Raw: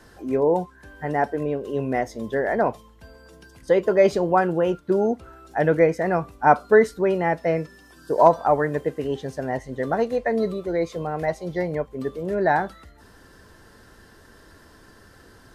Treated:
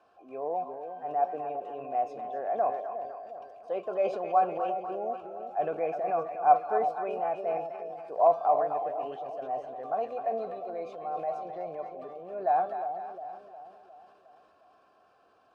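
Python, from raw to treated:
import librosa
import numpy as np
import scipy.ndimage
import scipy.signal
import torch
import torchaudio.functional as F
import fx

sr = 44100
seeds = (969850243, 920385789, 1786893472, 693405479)

y = fx.vowel_filter(x, sr, vowel='a')
y = fx.echo_split(y, sr, split_hz=730.0, low_ms=357, high_ms=253, feedback_pct=52, wet_db=-8.5)
y = fx.transient(y, sr, attack_db=-2, sustain_db=5)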